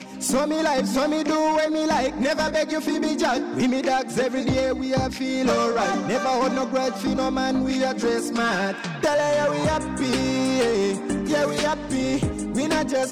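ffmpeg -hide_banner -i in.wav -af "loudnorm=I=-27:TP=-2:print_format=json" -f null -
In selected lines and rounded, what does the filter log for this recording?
"input_i" : "-23.0",
"input_tp" : "-15.8",
"input_lra" : "0.8",
"input_thresh" : "-33.0",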